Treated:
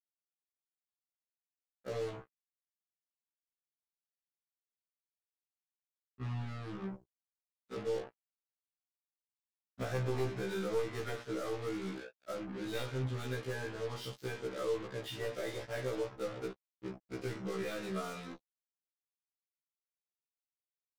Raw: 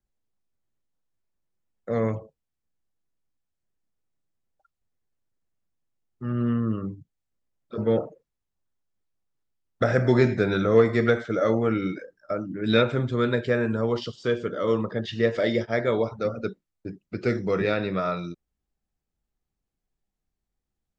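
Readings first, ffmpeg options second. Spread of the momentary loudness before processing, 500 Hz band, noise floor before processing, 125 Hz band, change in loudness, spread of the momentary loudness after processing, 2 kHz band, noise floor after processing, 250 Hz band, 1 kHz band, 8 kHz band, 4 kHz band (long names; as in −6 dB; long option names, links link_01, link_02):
14 LU, −14.0 dB, −84 dBFS, −13.0 dB, −14.5 dB, 10 LU, −14.0 dB, below −85 dBFS, −16.5 dB, −13.0 dB, can't be measured, −10.5 dB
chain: -af "aeval=exprs='0.501*(cos(1*acos(clip(val(0)/0.501,-1,1)))-cos(1*PI/2))+0.224*(cos(2*acos(clip(val(0)/0.501,-1,1)))-cos(2*PI/2))+0.0501*(cos(3*acos(clip(val(0)/0.501,-1,1)))-cos(3*PI/2))+0.158*(cos(5*acos(clip(val(0)/0.501,-1,1)))-cos(5*PI/2))+0.0141*(cos(7*acos(clip(val(0)/0.501,-1,1)))-cos(7*PI/2))':channel_layout=same,aecho=1:1:18|47:0.447|0.299,acompressor=threshold=-34dB:ratio=2.5,acrusher=bits=5:mix=0:aa=0.5,afftfilt=real='re*1.73*eq(mod(b,3),0)':imag='im*1.73*eq(mod(b,3),0)':win_size=2048:overlap=0.75,volume=-5.5dB"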